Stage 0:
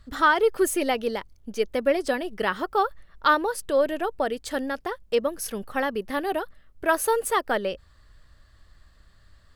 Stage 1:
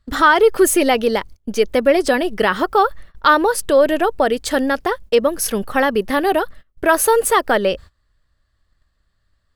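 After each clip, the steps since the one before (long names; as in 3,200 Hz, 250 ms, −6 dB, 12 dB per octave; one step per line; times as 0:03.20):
noise gate −45 dBFS, range −22 dB
in parallel at +2.5 dB: brickwall limiter −19.5 dBFS, peak gain reduction 11.5 dB
on the sum: level +4 dB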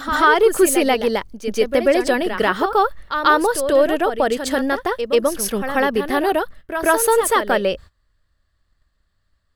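backwards echo 138 ms −8.5 dB
level −2 dB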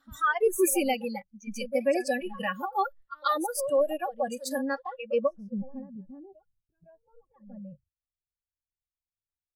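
noise reduction from a noise print of the clip's start 29 dB
low-pass filter sweep 15,000 Hz → 130 Hz, 0:04.48–0:05.88
level −9 dB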